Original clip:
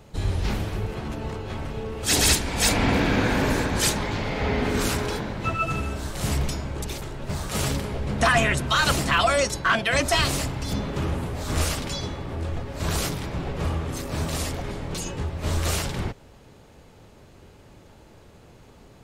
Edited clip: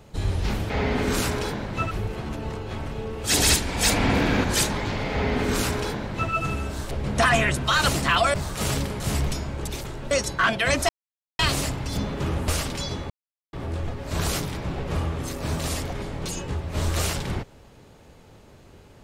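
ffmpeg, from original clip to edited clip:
-filter_complex "[0:a]asplit=11[a][b][c][d][e][f][g][h][i][j][k];[a]atrim=end=0.702[l];[b]atrim=start=4.368:end=5.582[m];[c]atrim=start=0.698:end=3.232[n];[d]atrim=start=3.698:end=6.172[o];[e]atrim=start=7.938:end=9.372[p];[f]atrim=start=7.278:end=7.942[q];[g]atrim=start=6.168:end=7.282[r];[h]atrim=start=9.368:end=10.15,asetpts=PTS-STARTPTS,afade=t=out:st=0.778:d=0.004:c=hsin,apad=pad_dur=0.5[s];[i]atrim=start=10.15:end=11.242,asetpts=PTS-STARTPTS,afade=t=in:d=0.004:c=hsin[t];[j]atrim=start=11.598:end=12.22,asetpts=PTS-STARTPTS,afade=t=out:st=0.618:d=0.004:c=hsin,apad=pad_dur=0.43[u];[k]atrim=start=12.22,asetpts=PTS-STARTPTS,afade=t=in:d=0.004:c=hsin[v];[l][m]acrossfade=d=0.004:c1=hsin:c2=hsin[w];[w][n]acrossfade=d=0.004:c1=hsin:c2=hsin[x];[x][o]acrossfade=d=0.004:c1=hsin:c2=hsin[y];[y][p]acrossfade=d=0.004:c1=hsin:c2=hsin[z];[z][q]acrossfade=d=0.004:c1=hsin:c2=hsin[aa];[aa][r]acrossfade=d=0.004:c1=hsin:c2=hsin[ab];[s][t]concat=n=2:v=0:a=1[ac];[ab][ac]acrossfade=d=0.004:c1=hsin:c2=hsin[ad];[u][v]concat=n=2:v=0:a=1[ae];[ad][ae]acrossfade=d=0.004:c1=hsin:c2=hsin"

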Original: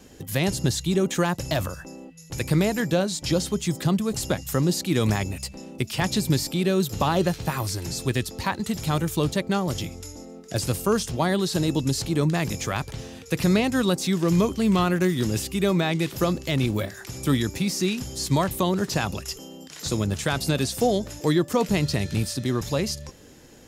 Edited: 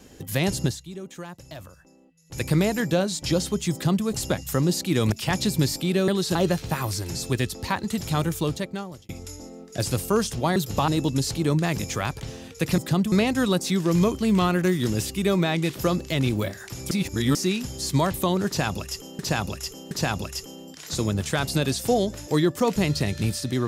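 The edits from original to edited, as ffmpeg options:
-filter_complex "[0:a]asplit=15[a][b][c][d][e][f][g][h][i][j][k][l][m][n][o];[a]atrim=end=0.85,asetpts=PTS-STARTPTS,afade=t=out:st=0.65:d=0.2:c=qua:silence=0.177828[p];[b]atrim=start=0.85:end=2.2,asetpts=PTS-STARTPTS,volume=-15dB[q];[c]atrim=start=2.2:end=5.122,asetpts=PTS-STARTPTS,afade=t=in:d=0.2:c=qua:silence=0.177828[r];[d]atrim=start=5.828:end=6.792[s];[e]atrim=start=11.318:end=11.592[t];[f]atrim=start=7.108:end=9.85,asetpts=PTS-STARTPTS,afade=t=out:st=1.942:d=0.8[u];[g]atrim=start=9.85:end=11.322,asetpts=PTS-STARTPTS,afade=t=in:d=0.004:c=hsin[v];[h]atrim=start=6.788:end=7.112[w];[i]atrim=start=11.588:end=13.492[x];[j]atrim=start=3.718:end=4.062[y];[k]atrim=start=13.488:end=17.282[z];[l]atrim=start=17.278:end=17.722,asetpts=PTS-STARTPTS,areverse[aa];[m]atrim=start=17.718:end=19.562[ab];[n]atrim=start=18.838:end=19.562[ac];[o]atrim=start=18.838[ad];[p][q][r]concat=n=3:v=0:a=1[ae];[ae][s]acrossfade=d=0.004:c1=hsin:c2=hsin[af];[af][t]acrossfade=d=0.004:c1=hsin:c2=hsin[ag];[u][v]concat=n=2:v=0:a=1[ah];[ag][ah]acrossfade=d=0.004:c1=hsin:c2=hsin[ai];[ai][w]acrossfade=d=0.004:c1=hsin:c2=hsin[aj];[aj][x]acrossfade=d=0.004:c1=hsin:c2=hsin[ak];[ak][y]acrossfade=d=0.004:c1=hsin:c2=hsin[al];[al][z]acrossfade=d=0.004:c1=hsin:c2=hsin[am];[am][aa]acrossfade=d=0.004:c1=hsin:c2=hsin[an];[an][ab]acrossfade=d=0.004:c1=hsin:c2=hsin[ao];[ao][ac]acrossfade=d=0.004:c1=hsin:c2=hsin[ap];[ap][ad]acrossfade=d=0.004:c1=hsin:c2=hsin"

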